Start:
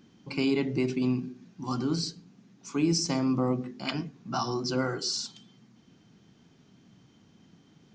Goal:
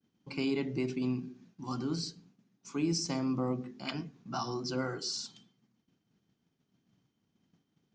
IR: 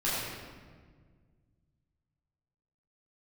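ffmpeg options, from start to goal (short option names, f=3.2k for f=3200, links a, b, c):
-af "agate=range=-33dB:threshold=-49dB:ratio=3:detection=peak,volume=-5.5dB"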